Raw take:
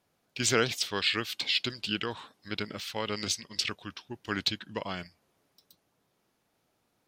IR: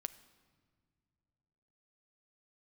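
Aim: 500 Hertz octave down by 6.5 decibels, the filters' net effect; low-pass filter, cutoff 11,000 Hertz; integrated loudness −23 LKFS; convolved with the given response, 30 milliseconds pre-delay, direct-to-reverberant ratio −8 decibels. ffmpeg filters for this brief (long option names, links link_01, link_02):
-filter_complex "[0:a]lowpass=11000,equalizer=frequency=500:width_type=o:gain=-8,asplit=2[link_01][link_02];[1:a]atrim=start_sample=2205,adelay=30[link_03];[link_02][link_03]afir=irnorm=-1:irlink=0,volume=10.5dB[link_04];[link_01][link_04]amix=inputs=2:normalize=0"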